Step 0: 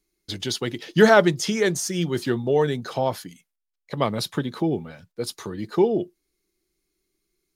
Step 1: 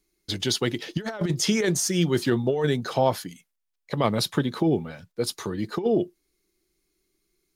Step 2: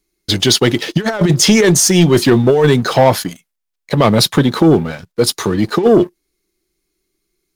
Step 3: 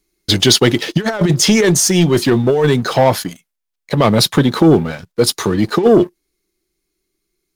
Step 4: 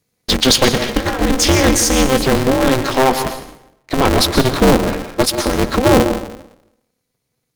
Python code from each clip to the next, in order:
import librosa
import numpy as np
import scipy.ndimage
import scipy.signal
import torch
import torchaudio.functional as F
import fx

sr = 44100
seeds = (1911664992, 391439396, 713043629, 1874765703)

y1 = fx.over_compress(x, sr, threshold_db=-21.0, ratio=-0.5)
y2 = fx.leveller(y1, sr, passes=2)
y2 = y2 * librosa.db_to_amplitude(7.0)
y3 = fx.rider(y2, sr, range_db=4, speed_s=2.0)
y3 = y3 * librosa.db_to_amplitude(-1.0)
y4 = fx.rev_plate(y3, sr, seeds[0], rt60_s=0.8, hf_ratio=0.75, predelay_ms=110, drr_db=7.5)
y4 = y4 * np.sign(np.sin(2.0 * np.pi * 130.0 * np.arange(len(y4)) / sr))
y4 = y4 * librosa.db_to_amplitude(-1.5)